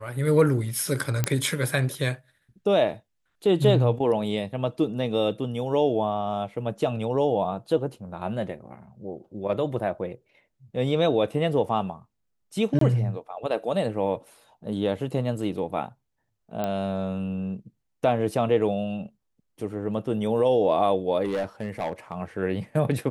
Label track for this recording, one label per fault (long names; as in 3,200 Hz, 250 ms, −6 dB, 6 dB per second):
1.240000	1.240000	click −8 dBFS
12.790000	12.810000	drop-out 23 ms
16.640000	16.640000	click −15 dBFS
21.250000	22.210000	clipping −23 dBFS